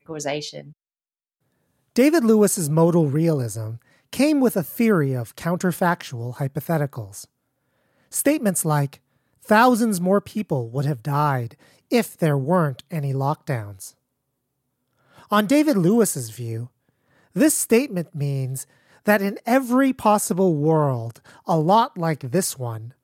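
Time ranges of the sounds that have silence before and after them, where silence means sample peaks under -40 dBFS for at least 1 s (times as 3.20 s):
1.96–13.90 s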